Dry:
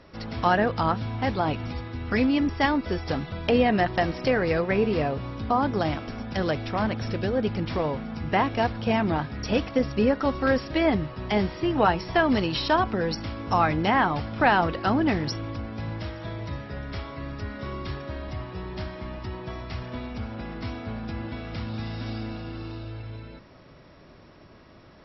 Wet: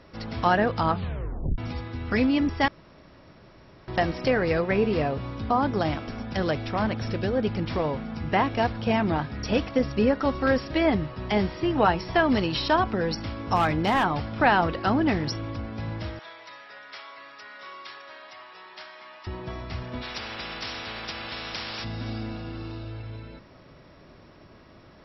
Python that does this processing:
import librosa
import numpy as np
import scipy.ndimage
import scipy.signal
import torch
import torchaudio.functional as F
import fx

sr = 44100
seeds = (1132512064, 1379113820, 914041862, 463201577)

y = fx.overload_stage(x, sr, gain_db=16.5, at=(13.55, 14.03), fade=0.02)
y = fx.highpass(y, sr, hz=1000.0, slope=12, at=(16.19, 19.27))
y = fx.spectral_comp(y, sr, ratio=10.0, at=(20.01, 21.83), fade=0.02)
y = fx.edit(y, sr, fx.tape_stop(start_s=0.89, length_s=0.69),
    fx.room_tone_fill(start_s=2.68, length_s=1.2), tone=tone)